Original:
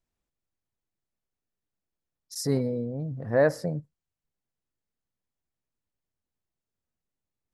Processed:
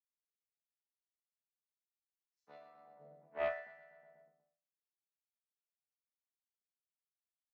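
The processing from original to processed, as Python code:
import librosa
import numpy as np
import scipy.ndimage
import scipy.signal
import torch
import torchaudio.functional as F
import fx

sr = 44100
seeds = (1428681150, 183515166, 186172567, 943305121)

p1 = fx.chord_vocoder(x, sr, chord='bare fifth', root=50)
p2 = fx.power_curve(p1, sr, exponent=2.0)
p3 = fx.tilt_eq(p2, sr, slope=-3.0)
p4 = fx.resonator_bank(p3, sr, root=52, chord='minor', decay_s=0.56)
p5 = p4 + fx.echo_feedback(p4, sr, ms=122, feedback_pct=53, wet_db=-9.5, dry=0)
p6 = fx.filter_lfo_highpass(p5, sr, shape='sine', hz=0.87, low_hz=490.0, high_hz=1800.0, q=0.71)
p7 = scipy.signal.sosfilt(scipy.signal.butter(2, 150.0, 'highpass', fs=sr, output='sos'), p6)
p8 = fx.doppler_dist(p7, sr, depth_ms=0.18)
y = p8 * librosa.db_to_amplitude(14.5)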